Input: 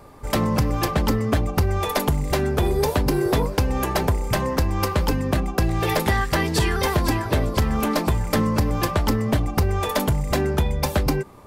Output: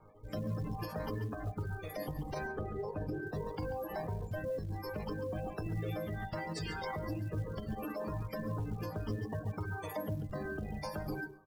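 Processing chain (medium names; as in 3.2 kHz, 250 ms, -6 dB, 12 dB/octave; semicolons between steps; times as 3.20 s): 9.24–10.29 s: high-pass 60 Hz 24 dB/octave; chord resonator G#2 fifth, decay 0.52 s; spectral gate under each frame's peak -20 dB strong; delay 139 ms -10.5 dB; rotary cabinet horn 0.7 Hz; dynamic bell 2.8 kHz, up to -5 dB, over -56 dBFS, Q 0.9; peak limiter -36 dBFS, peak gain reduction 10.5 dB; on a send at -9 dB: reverberation RT60 0.40 s, pre-delay 97 ms; on the sum: reverb removal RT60 1 s; short-mantissa float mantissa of 4-bit; 2.47–3.27 s: treble shelf 3.8 kHz -11 dB; trim +7 dB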